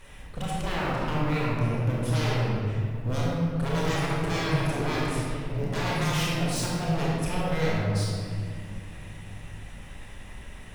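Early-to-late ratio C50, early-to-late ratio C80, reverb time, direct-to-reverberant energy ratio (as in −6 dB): −2.5 dB, −0.5 dB, 2.2 s, −5.5 dB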